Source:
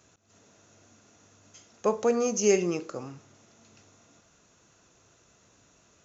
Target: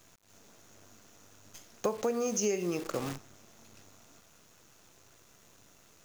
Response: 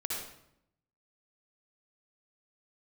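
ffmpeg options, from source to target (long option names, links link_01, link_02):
-af "acrusher=bits=8:dc=4:mix=0:aa=0.000001,acompressor=threshold=-32dB:ratio=8,volume=4.5dB"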